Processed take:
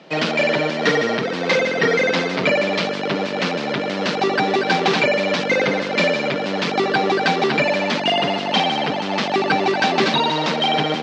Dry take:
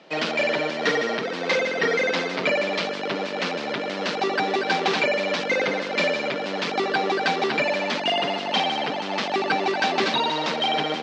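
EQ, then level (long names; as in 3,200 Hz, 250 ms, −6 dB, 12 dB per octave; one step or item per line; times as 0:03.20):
parametric band 93 Hz +12 dB 1.8 octaves
+4.0 dB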